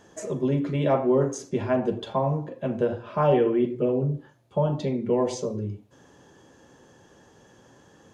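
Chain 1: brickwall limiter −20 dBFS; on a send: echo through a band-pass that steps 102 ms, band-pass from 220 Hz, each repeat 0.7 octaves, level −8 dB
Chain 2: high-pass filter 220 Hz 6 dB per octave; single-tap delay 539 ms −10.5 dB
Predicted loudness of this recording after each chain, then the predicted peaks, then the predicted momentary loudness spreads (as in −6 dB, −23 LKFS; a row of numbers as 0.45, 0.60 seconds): −29.5, −27.0 LKFS; −17.0, −10.5 dBFS; 5, 12 LU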